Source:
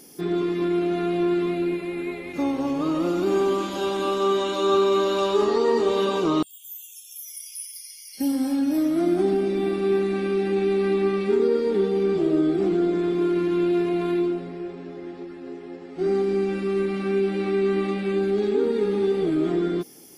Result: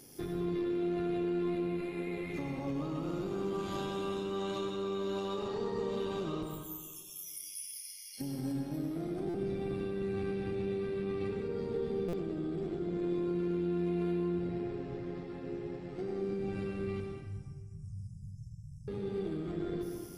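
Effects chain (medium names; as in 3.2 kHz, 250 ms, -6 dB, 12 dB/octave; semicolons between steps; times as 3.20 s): octave divider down 1 oct, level -2 dB; peak limiter -19.5 dBFS, peak gain reduction 10 dB; compression, threshold -28 dBFS, peak gain reduction 6 dB; AM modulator 97 Hz, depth 25%; 17.00–18.88 s: brick-wall FIR band-stop 170–4900 Hz; on a send at -2 dB: reverberation RT60 1.6 s, pre-delay 92 ms; on the sum: buffer glitch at 9.29/12.08 s, samples 256, times 8; trim -5.5 dB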